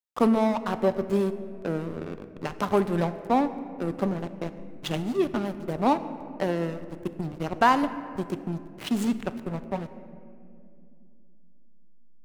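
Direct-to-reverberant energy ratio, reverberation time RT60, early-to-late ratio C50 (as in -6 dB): 11.0 dB, 2.5 s, 12.5 dB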